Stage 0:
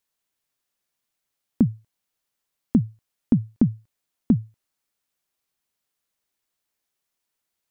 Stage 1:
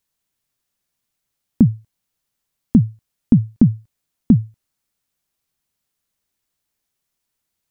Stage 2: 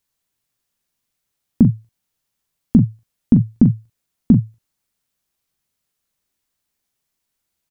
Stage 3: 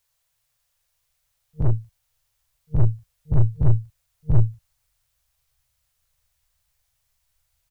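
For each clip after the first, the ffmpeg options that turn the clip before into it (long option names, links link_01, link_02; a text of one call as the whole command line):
ffmpeg -i in.wav -af "bass=frequency=250:gain=8,treble=frequency=4000:gain=2,volume=1.5dB" out.wav
ffmpeg -i in.wav -af "aecho=1:1:17|42:0.2|0.398" out.wav
ffmpeg -i in.wav -af "afftfilt=real='re*(1-between(b*sr/4096,160,460))':imag='im*(1-between(b*sr/4096,160,460))':win_size=4096:overlap=0.75,aeval=exprs='(tanh(20*val(0)+0.5)-tanh(0.5))/20':channel_layout=same,asubboost=boost=8:cutoff=84,volume=6dB" out.wav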